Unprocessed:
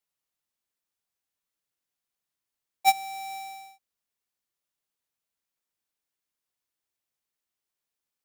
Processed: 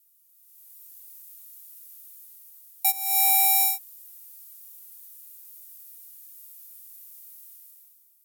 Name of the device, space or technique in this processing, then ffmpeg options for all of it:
FM broadcast chain: -filter_complex "[0:a]highpass=54,dynaudnorm=f=110:g=11:m=16dB,acrossover=split=310|3000[a][b][c];[a]acompressor=threshold=-55dB:ratio=4[d];[b]acompressor=threshold=-24dB:ratio=4[e];[c]acompressor=threshold=-35dB:ratio=4[f];[d][e][f]amix=inputs=3:normalize=0,aemphasis=mode=production:type=50fm,alimiter=limit=-16dB:level=0:latency=1:release=454,asoftclip=type=hard:threshold=-20dB,lowpass=f=15k:w=0.5412,lowpass=f=15k:w=1.3066,aemphasis=mode=production:type=50fm"

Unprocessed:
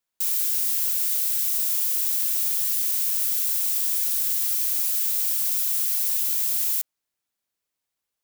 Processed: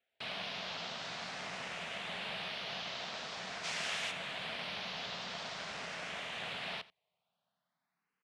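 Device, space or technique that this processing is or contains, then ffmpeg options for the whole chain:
barber-pole phaser into a guitar amplifier: -filter_complex "[0:a]asplit=2[a][b];[b]afreqshift=0.46[c];[a][c]amix=inputs=2:normalize=1,asoftclip=type=tanh:threshold=-25.5dB,highpass=100,equalizer=f=100:t=q:w=4:g=-4,equalizer=f=180:t=q:w=4:g=8,equalizer=f=320:t=q:w=4:g=-9,equalizer=f=670:t=q:w=4:g=8,lowpass=f=3.4k:w=0.5412,lowpass=f=3.4k:w=1.3066,asplit=3[d][e][f];[d]afade=t=out:st=3.63:d=0.02[g];[e]highshelf=f=2.5k:g=11.5,afade=t=in:st=3.63:d=0.02,afade=t=out:st=4.1:d=0.02[h];[f]afade=t=in:st=4.1:d=0.02[i];[g][h][i]amix=inputs=3:normalize=0,aecho=1:1:86:0.106,volume=7.5dB"

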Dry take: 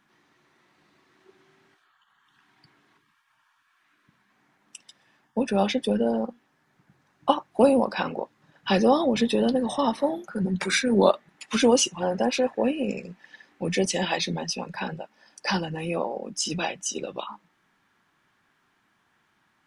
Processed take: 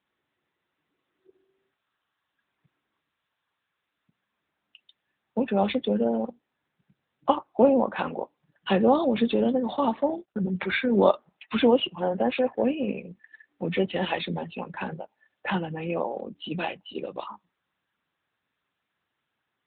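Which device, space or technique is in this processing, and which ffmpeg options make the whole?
mobile call with aggressive noise cancelling: -filter_complex "[0:a]asettb=1/sr,asplit=3[a][b][c];[a]atrim=end=9.444[d];[b]atrim=start=9.44:end=10.73,asetpts=PTS-STARTPTS,afade=t=in:d=0.004:c=qsin,afade=t=out:st=1.286:d=0.004:c=qsin,agate=range=-42dB:threshold=-32dB:ratio=16:detection=peak[e];[c]atrim=start=10.726[f];[d][e]acrossfade=d=0.004:c1=hsin:c2=qsin[g];[g][f]acrossfade=d=0.004:c1=qsin:c2=hsin,highpass=f=100:p=1,afftdn=nr=16:nf=-48" -ar 8000 -c:a libopencore_amrnb -b:a 10200

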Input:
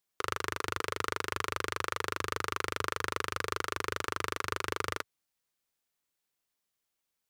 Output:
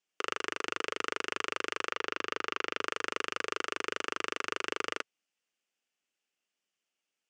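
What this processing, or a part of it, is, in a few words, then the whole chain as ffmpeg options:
television speaker: -filter_complex "[0:a]highpass=f=190:w=0.5412,highpass=f=190:w=1.3066,equalizer=f=1k:t=q:w=4:g=-6,equalizer=f=2.8k:t=q:w=4:g=8,equalizer=f=4k:t=q:w=4:g=-7,lowpass=f=7.6k:w=0.5412,lowpass=f=7.6k:w=1.3066,asettb=1/sr,asplit=3[a][b][c];[a]atrim=end=1.914[d];[b]atrim=start=1.91:end=2.81,asetpts=PTS-STARTPTS,afade=t=in:d=0.004:c=qsin,afade=t=out:st=0.896:d=0.004:c=qsin,lowpass=5.5k[e];[c]atrim=start=2.806[f];[d][e]acrossfade=d=0.004:c1=hsin:c2=qsin[g];[g][f]acrossfade=d=0.004:c1=qsin:c2=hsin"

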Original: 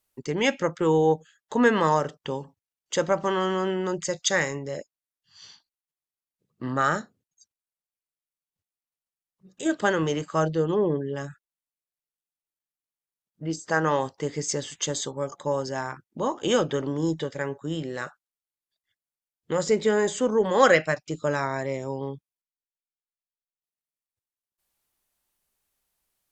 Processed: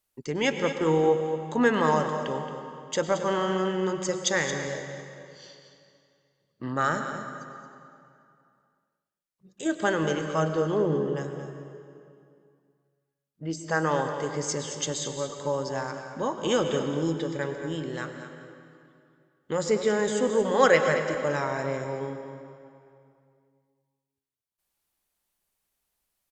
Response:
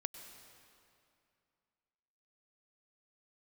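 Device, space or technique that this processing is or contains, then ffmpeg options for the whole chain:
cave: -filter_complex "[0:a]aecho=1:1:224:0.299[a];[1:a]atrim=start_sample=2205[b];[a][b]afir=irnorm=-1:irlink=0"

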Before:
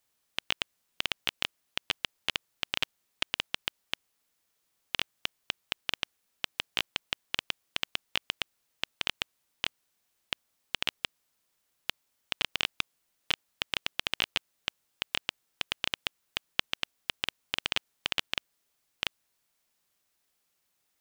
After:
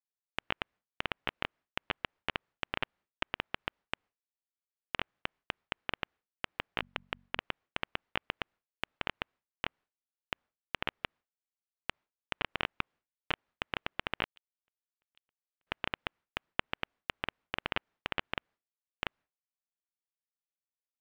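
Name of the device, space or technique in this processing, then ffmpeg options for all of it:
hearing-loss simulation: -filter_complex "[0:a]acrossover=split=3200[a][b];[b]acompressor=threshold=-40dB:ratio=4:attack=1:release=60[c];[a][c]amix=inputs=2:normalize=0,asettb=1/sr,asplit=3[d][e][f];[d]atrim=end=6.804[g];[e]atrim=start=6.8:end=7.39,asetpts=PTS-STARTPTS,afade=t=in:d=0.004:c=qsin,afade=t=out:st=0.586:d=0.004:c=qsin,bandreject=f=46.93:t=h:w=4,bandreject=f=93.86:t=h:w=4,bandreject=f=140.79:t=h:w=4,bandreject=f=187.72:t=h:w=4,bandreject=f=234.65:t=h:w=4[h];[f]atrim=start=7.386[i];[g][h]acrossfade=d=0.004:c1=hsin:c2=qsin[j];[j][i]acrossfade=d=0.004:c1=qsin:c2=hsin,lowpass=2k,agate=range=-33dB:threshold=-60dB:ratio=3:detection=peak,asettb=1/sr,asplit=3[k][l][m];[k]atrim=end=14.244[n];[l]atrim=start=14.24:end=15.67,asetpts=PTS-STARTPTS,afade=t=in:d=0.004:c=qsin,afade=t=out:st=1.426:d=0.004:c=qsin,agate=range=-48dB:threshold=-37dB:ratio=16:detection=peak[o];[m]atrim=start=15.666[p];[n][o]acrossfade=d=0.004:c1=hsin:c2=qsin[q];[q][p]acrossfade=d=0.004:c1=qsin:c2=hsin,volume=3dB"

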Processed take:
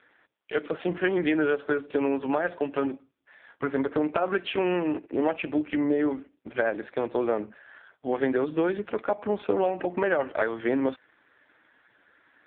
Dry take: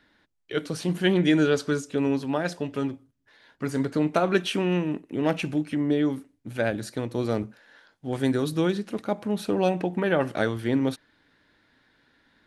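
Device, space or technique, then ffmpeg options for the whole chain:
voicemail: -filter_complex "[0:a]asettb=1/sr,asplit=3[a][b][c];[a]atrim=end=3.674[d];[b]atrim=start=3.67:end=4.13,asetpts=PTS-STARTPTS,afade=t=in:d=0.004:c=qsin,afade=t=out:st=0.456:d=0.004:c=qsin,lowpass=6.7k[e];[c]atrim=start=4.126[f];[d][e]acrossfade=d=0.004:c1=hsin:c2=qsin[g];[g][f]acrossfade=d=0.004:c1=qsin:c2=hsin,highpass=410,lowpass=2.7k,acompressor=threshold=-29dB:ratio=8,volume=9dB" -ar 8000 -c:a libopencore_amrnb -b:a 5150

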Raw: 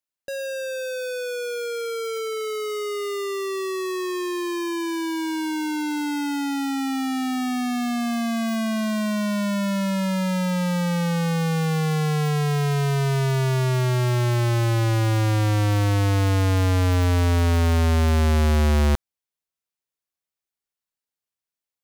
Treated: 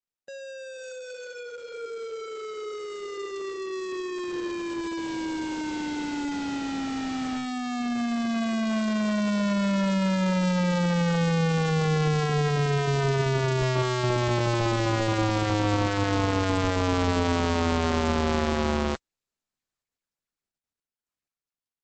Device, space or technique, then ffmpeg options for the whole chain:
video call: -af "highpass=150,dynaudnorm=f=240:g=21:m=5.5dB,agate=range=-6dB:threshold=-18dB:ratio=16:detection=peak,volume=-4dB" -ar 48000 -c:a libopus -b:a 12k

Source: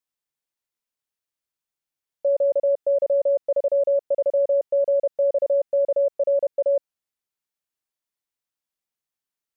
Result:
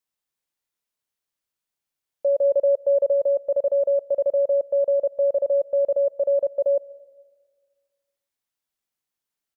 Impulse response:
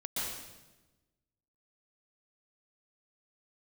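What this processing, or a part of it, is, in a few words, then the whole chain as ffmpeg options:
ducked reverb: -filter_complex "[0:a]asplit=3[a][b][c];[a]afade=t=out:st=2.43:d=0.02[d];[b]aecho=1:1:2.1:0.37,afade=t=in:st=2.43:d=0.02,afade=t=out:st=3.12:d=0.02[e];[c]afade=t=in:st=3.12:d=0.02[f];[d][e][f]amix=inputs=3:normalize=0,asplit=3[g][h][i];[1:a]atrim=start_sample=2205[j];[h][j]afir=irnorm=-1:irlink=0[k];[i]apad=whole_len=421693[l];[k][l]sidechaincompress=threshold=-37dB:ratio=10:attack=16:release=1110,volume=-9.5dB[m];[g][m]amix=inputs=2:normalize=0"

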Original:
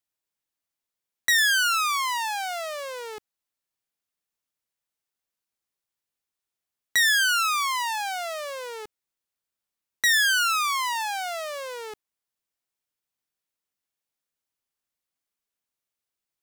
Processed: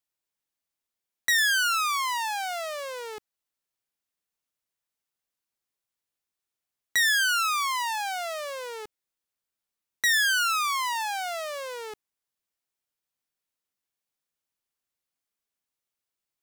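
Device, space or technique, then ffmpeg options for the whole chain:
parallel distortion: -filter_complex "[0:a]asplit=2[a][b];[b]asoftclip=type=hard:threshold=-27.5dB,volume=-11dB[c];[a][c]amix=inputs=2:normalize=0,volume=-3dB"

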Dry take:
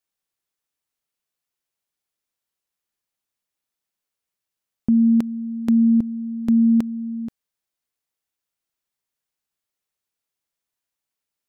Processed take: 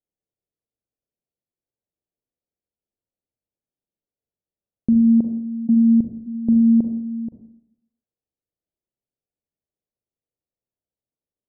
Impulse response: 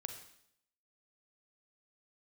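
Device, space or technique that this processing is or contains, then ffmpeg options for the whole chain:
next room: -filter_complex "[0:a]asplit=3[a][b][c];[a]afade=t=out:st=5.66:d=0.02[d];[b]agate=range=-27dB:threshold=-19dB:ratio=16:detection=peak,afade=t=in:st=5.66:d=0.02,afade=t=out:st=6.26:d=0.02[e];[c]afade=t=in:st=6.26:d=0.02[f];[d][e][f]amix=inputs=3:normalize=0,lowpass=f=620:w=0.5412,lowpass=f=620:w=1.3066[g];[1:a]atrim=start_sample=2205[h];[g][h]afir=irnorm=-1:irlink=0,volume=4.5dB"

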